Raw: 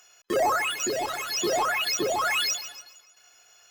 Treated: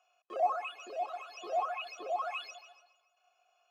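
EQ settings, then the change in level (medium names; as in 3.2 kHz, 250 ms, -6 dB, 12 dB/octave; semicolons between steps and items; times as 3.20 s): vowel filter a; high-pass 230 Hz 12 dB/octave; -1.5 dB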